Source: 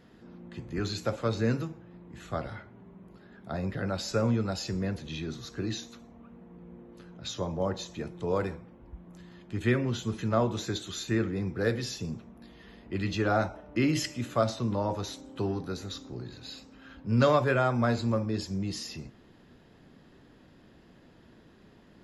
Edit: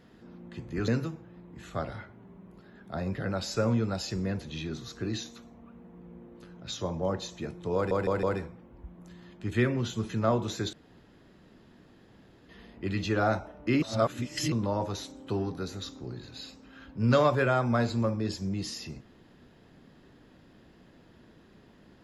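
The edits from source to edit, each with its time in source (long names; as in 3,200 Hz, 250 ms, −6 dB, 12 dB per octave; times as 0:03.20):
0:00.88–0:01.45: remove
0:08.32: stutter 0.16 s, 4 plays
0:10.82–0:12.58: fill with room tone
0:13.91–0:14.61: reverse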